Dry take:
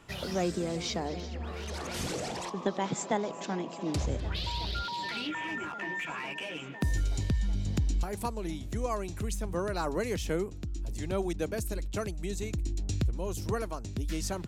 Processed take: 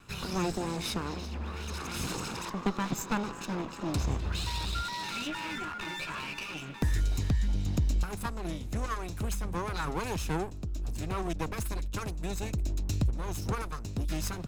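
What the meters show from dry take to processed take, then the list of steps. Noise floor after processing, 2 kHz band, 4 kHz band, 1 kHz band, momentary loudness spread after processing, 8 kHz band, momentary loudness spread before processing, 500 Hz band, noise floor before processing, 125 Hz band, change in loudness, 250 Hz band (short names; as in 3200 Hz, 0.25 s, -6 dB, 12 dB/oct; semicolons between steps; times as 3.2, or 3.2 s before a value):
-41 dBFS, -0.5 dB, 0.0 dB, 0.0 dB, 6 LU, 0.0 dB, 6 LU, -5.0 dB, -41 dBFS, +1.5 dB, 0.0 dB, 0.0 dB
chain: minimum comb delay 0.76 ms; wow and flutter 28 cents; gain +1.5 dB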